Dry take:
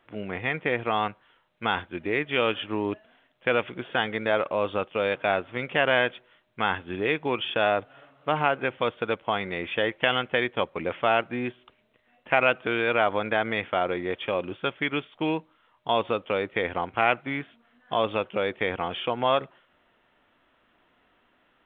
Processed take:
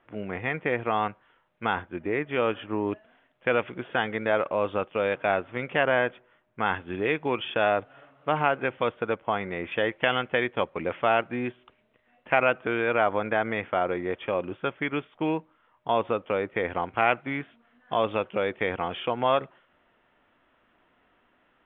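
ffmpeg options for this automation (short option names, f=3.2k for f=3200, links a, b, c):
-af "asetnsamples=n=441:p=0,asendcmd='1.73 lowpass f 1800;2.87 lowpass f 2600;5.83 lowpass f 1800;6.66 lowpass f 2900;8.92 lowpass f 2100;9.72 lowpass f 2900;12.4 lowpass f 2200;16.7 lowpass f 3000',lowpass=2.4k"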